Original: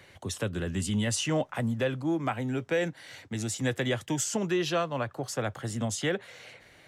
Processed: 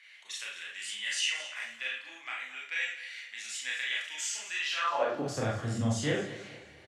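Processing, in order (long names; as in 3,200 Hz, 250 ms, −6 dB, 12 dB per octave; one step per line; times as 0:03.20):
high-frequency loss of the air 77 metres
repeating echo 219 ms, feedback 36%, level −14.5 dB
four-comb reverb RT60 0.42 s, combs from 27 ms, DRR −4 dB
high-pass filter sweep 2,200 Hz → 76 Hz, 0:04.76–0:05.43
high-shelf EQ 9,900 Hz +10.5 dB
level −6 dB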